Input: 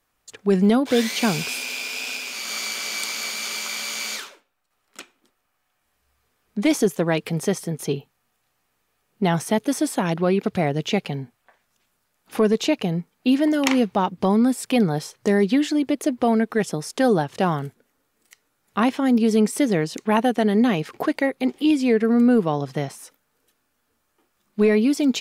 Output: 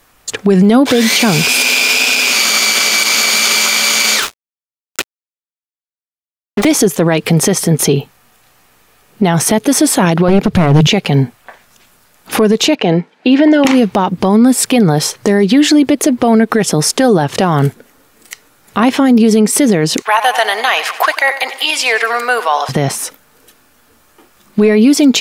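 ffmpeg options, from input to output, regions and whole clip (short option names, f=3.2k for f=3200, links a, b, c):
-filter_complex "[0:a]asettb=1/sr,asplit=3[a][b][c];[a]atrim=end=4.224[d];[b]atrim=start=4.22:end=6.65,asetpts=PTS-STARTPTS,afade=t=in:d=0.004:c=qsin,afade=t=out:st=2.426:d=0.004:c=qsin,highpass=f=290:w=0.5412,highpass=f=290:w=1.3066,acrusher=bits=5:mix=0:aa=0.5[e];[c]atrim=start=6.646[f];[d][e]acrossfade=d=0.004:c1=hsin:c2=qsin[g];[g][f]acrossfade=d=0.004:c1=qsin:c2=hsin,asettb=1/sr,asplit=3[h][i][j];[h]atrim=end=10.284[k];[i]atrim=start=10.28:end=10.87,asetpts=PTS-STARTPTS,afade=t=in:d=0.004:c=qsin,afade=t=out:st=0.586:d=0.004:c=qsin,lowshelf=f=310:g=10,bandreject=f=50:t=h:w=6,bandreject=f=100:t=h:w=6,bandreject=f=150:t=h:w=6,aeval=exprs='clip(val(0),-1,0.133)':c=same[l];[j]atrim=start=10.866[m];[k][l]acrossfade=d=0.004:c1=hsin:c2=qsin[n];[n][m]acrossfade=d=0.004:c1=qsin:c2=hsin,asettb=1/sr,asplit=3[o][p][q];[o]atrim=end=12.754[r];[p]atrim=start=12.75:end=13.65,asetpts=PTS-STARTPTS,afade=t=in:d=0.004:c=qsin,afade=t=out:st=0.896:d=0.004:c=qsin,highpass=300,lowpass=3.5k,bandreject=f=1.2k:w=5.9[s];[q]atrim=start=13.646[t];[r][s]acrossfade=d=0.004:c1=hsin:c2=qsin[u];[u][t]acrossfade=d=0.004:c1=qsin:c2=hsin,asettb=1/sr,asplit=3[v][w][x];[v]atrim=end=20.024[y];[w]atrim=start=20.02:end=22.69,asetpts=PTS-STARTPTS,afade=t=in:d=0.004:c=qsin,afade=t=out:st=2.666:d=0.004:c=qsin,highpass=f=800:w=0.5412,highpass=f=800:w=1.3066,aecho=1:1:93|186|279|372|465:0.158|0.0888|0.0497|0.0278|0.0156,atrim=end_sample=117747[z];[x]atrim=start=22.686[aa];[y][z]acrossfade=d=0.004:c1=hsin:c2=qsin[ab];[ab][aa]acrossfade=d=0.004:c1=qsin:c2=hsin,acompressor=threshold=-22dB:ratio=6,alimiter=level_in=22dB:limit=-1dB:release=50:level=0:latency=1,volume=-1dB"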